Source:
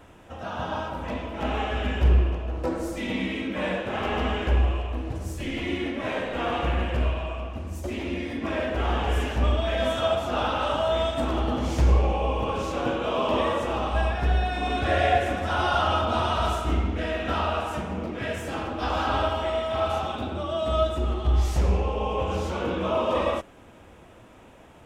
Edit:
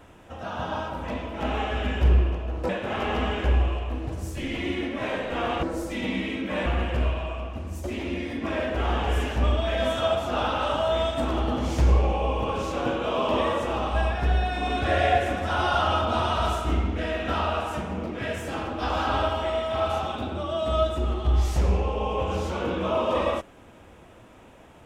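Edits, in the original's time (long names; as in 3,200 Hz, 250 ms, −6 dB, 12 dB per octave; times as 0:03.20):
0:02.69–0:03.72: move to 0:06.66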